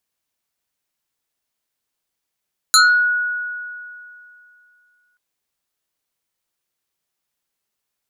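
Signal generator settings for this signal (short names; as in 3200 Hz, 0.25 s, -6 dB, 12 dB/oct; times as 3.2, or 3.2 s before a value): FM tone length 2.43 s, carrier 1460 Hz, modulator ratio 1.89, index 3.6, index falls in 0.36 s exponential, decay 2.60 s, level -7 dB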